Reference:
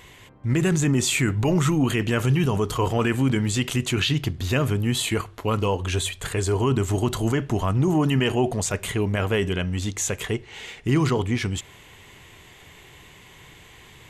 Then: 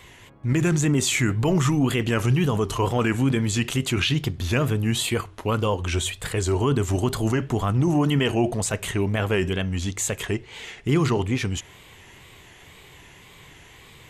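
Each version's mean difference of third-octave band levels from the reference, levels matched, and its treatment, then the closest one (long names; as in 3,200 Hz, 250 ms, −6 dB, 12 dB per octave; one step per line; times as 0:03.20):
1.5 dB: tape wow and flutter 110 cents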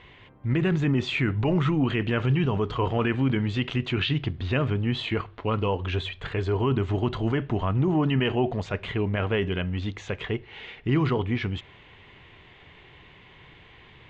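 4.0 dB: low-pass filter 3,600 Hz 24 dB per octave
level −2.5 dB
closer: first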